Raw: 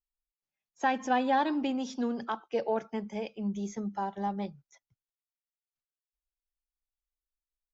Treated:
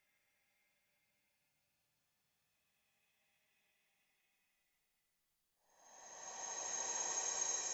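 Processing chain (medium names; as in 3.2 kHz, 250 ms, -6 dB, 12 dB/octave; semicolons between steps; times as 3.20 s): time reversed locally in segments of 83 ms; Paulstretch 29×, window 0.10 s, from 0.51 s; trim +10.5 dB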